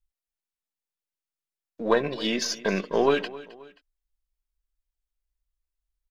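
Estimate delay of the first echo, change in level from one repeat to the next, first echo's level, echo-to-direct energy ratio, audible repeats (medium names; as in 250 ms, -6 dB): 265 ms, -7.5 dB, -18.5 dB, -18.0 dB, 2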